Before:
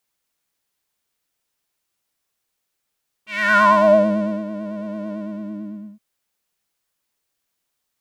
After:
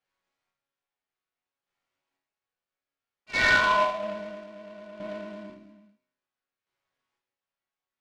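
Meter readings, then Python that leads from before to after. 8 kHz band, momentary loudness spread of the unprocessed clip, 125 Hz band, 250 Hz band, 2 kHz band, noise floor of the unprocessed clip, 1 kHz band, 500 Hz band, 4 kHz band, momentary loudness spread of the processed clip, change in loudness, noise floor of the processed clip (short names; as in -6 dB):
n/a, 19 LU, -13.5 dB, -18.5 dB, -3.0 dB, -77 dBFS, -8.5 dB, -13.5 dB, +2.0 dB, 21 LU, -5.0 dB, under -85 dBFS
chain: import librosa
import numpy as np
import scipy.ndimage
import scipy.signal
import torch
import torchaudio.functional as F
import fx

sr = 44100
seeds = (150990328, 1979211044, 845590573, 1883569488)

p1 = scipy.signal.sosfilt(scipy.signal.butter(2, 2700.0, 'lowpass', fs=sr, output='sos'), x)
p2 = fx.low_shelf(p1, sr, hz=380.0, db=-6.0)
p3 = fx.over_compress(p2, sr, threshold_db=-20.0, ratio=-0.5)
p4 = p2 + (p3 * librosa.db_to_amplitude(2.0))
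p5 = fx.chopper(p4, sr, hz=0.6, depth_pct=60, duty_pct=30)
p6 = fx.resonator_bank(p5, sr, root=42, chord='sus4', decay_s=0.72)
p7 = fx.noise_mod_delay(p6, sr, seeds[0], noise_hz=1800.0, depth_ms=0.034)
y = p7 * librosa.db_to_amplitude(8.5)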